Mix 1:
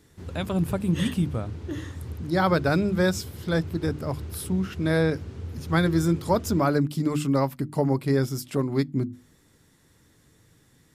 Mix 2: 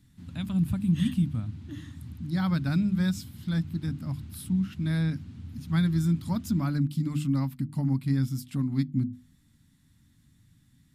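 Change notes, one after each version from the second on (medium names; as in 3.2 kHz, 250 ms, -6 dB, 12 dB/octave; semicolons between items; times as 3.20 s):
background: add high-pass 120 Hz 12 dB/octave; master: add FFT filter 260 Hz 0 dB, 420 Hz -27 dB, 750 Hz -15 dB, 3.9 kHz -5 dB, 5.7 kHz -10 dB, 9.4 kHz -7 dB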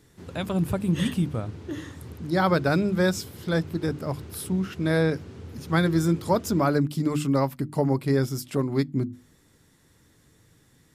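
master: remove FFT filter 260 Hz 0 dB, 420 Hz -27 dB, 750 Hz -15 dB, 3.9 kHz -5 dB, 5.7 kHz -10 dB, 9.4 kHz -7 dB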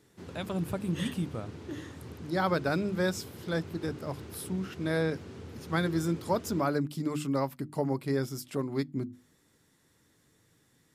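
speech -5.5 dB; master: add bass shelf 93 Hz -11 dB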